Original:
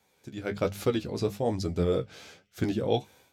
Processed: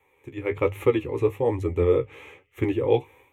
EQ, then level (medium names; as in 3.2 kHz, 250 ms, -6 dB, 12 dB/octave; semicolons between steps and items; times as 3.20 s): resonant high shelf 3 kHz -10 dB, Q 1.5; static phaser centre 1 kHz, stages 8; +7.5 dB